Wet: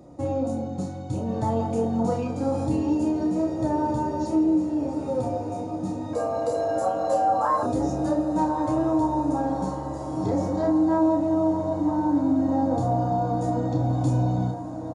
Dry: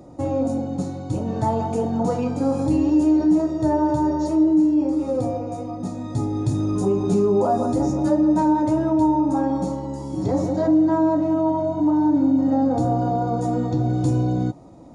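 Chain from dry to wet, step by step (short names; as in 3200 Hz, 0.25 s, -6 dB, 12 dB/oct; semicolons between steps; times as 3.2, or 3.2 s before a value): 6.13–7.63 frequency shift +360 Hz; doubler 31 ms -5.5 dB; diffused feedback echo 1.262 s, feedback 72%, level -12 dB; gain -4.5 dB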